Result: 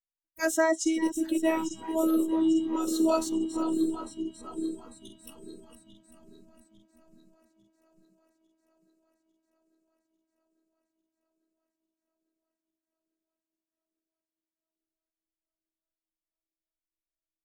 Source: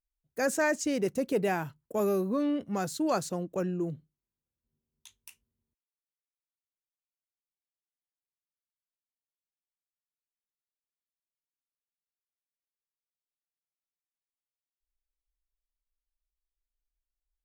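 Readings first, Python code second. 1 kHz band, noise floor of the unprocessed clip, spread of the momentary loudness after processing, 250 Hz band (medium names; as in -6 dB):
+0.5 dB, under -85 dBFS, 12 LU, +6.0 dB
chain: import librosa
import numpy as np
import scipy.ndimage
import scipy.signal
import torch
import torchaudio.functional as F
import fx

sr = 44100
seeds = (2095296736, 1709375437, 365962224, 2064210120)

y = fx.reverse_delay_fb(x, sr, ms=424, feedback_pct=81, wet_db=-8.0)
y = fx.robotise(y, sr, hz=321.0)
y = fx.noise_reduce_blind(y, sr, reduce_db=20)
y = y * librosa.db_to_amplitude(4.5)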